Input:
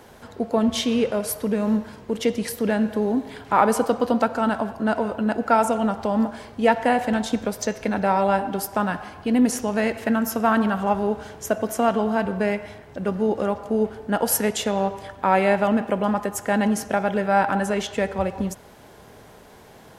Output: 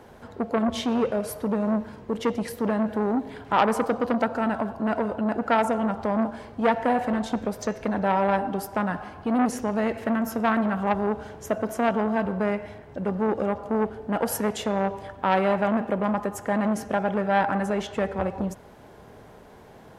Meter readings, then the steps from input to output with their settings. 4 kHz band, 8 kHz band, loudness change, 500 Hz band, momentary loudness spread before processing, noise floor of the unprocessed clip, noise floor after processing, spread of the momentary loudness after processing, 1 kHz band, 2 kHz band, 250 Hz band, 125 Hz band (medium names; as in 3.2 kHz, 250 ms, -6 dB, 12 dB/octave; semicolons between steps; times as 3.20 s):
-6.0 dB, -9.0 dB, -3.0 dB, -3.0 dB, 7 LU, -47 dBFS, -48 dBFS, 6 LU, -2.5 dB, -3.5 dB, -2.5 dB, -2.0 dB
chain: treble shelf 2.4 kHz -9.5 dB; transformer saturation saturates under 1.3 kHz